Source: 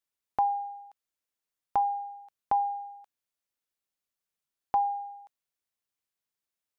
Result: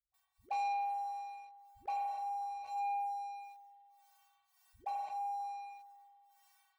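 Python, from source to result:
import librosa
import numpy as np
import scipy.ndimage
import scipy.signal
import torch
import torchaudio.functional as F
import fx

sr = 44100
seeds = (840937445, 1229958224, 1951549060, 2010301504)

p1 = scipy.signal.sosfilt(scipy.signal.ellip(3, 1.0, 40, [110.0, 850.0], 'bandstop', fs=sr, output='sos'), x)
p2 = np.clip(10.0 ** (30.5 / 20.0) * p1, -1.0, 1.0) / 10.0 ** (30.5 / 20.0)
p3 = scipy.signal.sosfilt(scipy.signal.butter(2, 53.0, 'highpass', fs=sr, output='sos'), p2)
p4 = fx.stiff_resonator(p3, sr, f0_hz=370.0, decay_s=0.31, stiffness=0.002)
p5 = fx.small_body(p4, sr, hz=(590.0, 840.0), ring_ms=25, db=18)
p6 = fx.dispersion(p5, sr, late='highs', ms=141.0, hz=300.0)
p7 = p6 + fx.echo_single(p6, sr, ms=115, db=-16.0, dry=0)
p8 = p7 * (1.0 - 0.96 / 2.0 + 0.96 / 2.0 * np.cos(2.0 * np.pi * 1.7 * (np.arange(len(p7)) / sr)))
p9 = fx.rev_spring(p8, sr, rt60_s=1.2, pass_ms=(42,), chirp_ms=50, drr_db=-1.0)
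p10 = fx.leveller(p9, sr, passes=2)
p11 = fx.env_flatten(p10, sr, amount_pct=50)
y = F.gain(torch.from_numpy(p11), 2.0).numpy()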